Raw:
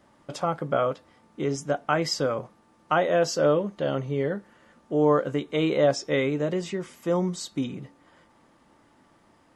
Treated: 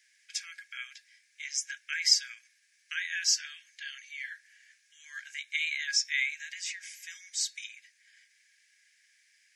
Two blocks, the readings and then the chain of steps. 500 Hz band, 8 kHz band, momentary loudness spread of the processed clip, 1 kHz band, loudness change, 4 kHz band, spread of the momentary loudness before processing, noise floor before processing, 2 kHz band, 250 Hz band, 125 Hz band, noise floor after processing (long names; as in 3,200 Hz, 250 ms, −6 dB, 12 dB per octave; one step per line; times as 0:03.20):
below −40 dB, +7.5 dB, 19 LU, below −30 dB, −5.0 dB, +5.0 dB, 10 LU, −61 dBFS, +1.5 dB, below −40 dB, below −40 dB, −69 dBFS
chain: Chebyshev high-pass with heavy ripple 1,600 Hz, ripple 9 dB
level +8.5 dB